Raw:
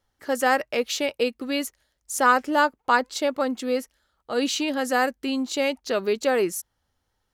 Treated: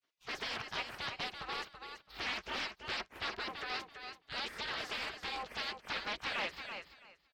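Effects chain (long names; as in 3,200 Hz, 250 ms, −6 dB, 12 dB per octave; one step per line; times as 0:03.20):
gate on every frequency bin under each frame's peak −25 dB weak
high-shelf EQ 8,400 Hz +7 dB
leveller curve on the samples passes 1
soft clipping −37 dBFS, distortion −7 dB
high-frequency loss of the air 210 metres
on a send: repeating echo 332 ms, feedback 19%, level −7.5 dB
on the sum: highs frequency-modulated by the lows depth 0.43 ms
level +7 dB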